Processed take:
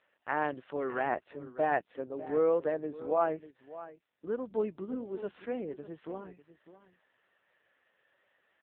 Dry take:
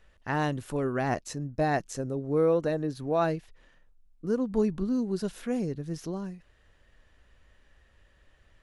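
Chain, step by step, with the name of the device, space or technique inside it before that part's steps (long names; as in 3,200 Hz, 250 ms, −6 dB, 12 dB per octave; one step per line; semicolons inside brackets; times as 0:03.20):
0:03.00–0:04.25: treble cut that deepens with the level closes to 2,300 Hz, closed at −25 dBFS
satellite phone (band-pass filter 400–3,300 Hz; single-tap delay 599 ms −15 dB; AMR narrowband 5.9 kbit/s 8,000 Hz)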